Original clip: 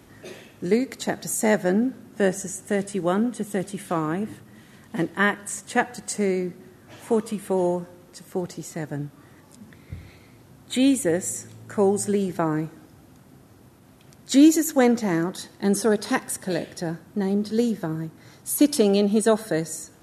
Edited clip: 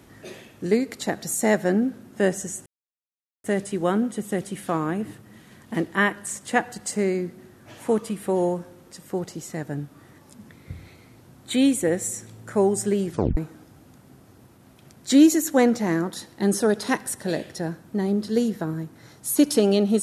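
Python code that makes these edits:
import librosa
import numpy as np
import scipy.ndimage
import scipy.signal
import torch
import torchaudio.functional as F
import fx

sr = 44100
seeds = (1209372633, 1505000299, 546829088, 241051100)

y = fx.edit(x, sr, fx.insert_silence(at_s=2.66, length_s=0.78),
    fx.tape_stop(start_s=12.32, length_s=0.27), tone=tone)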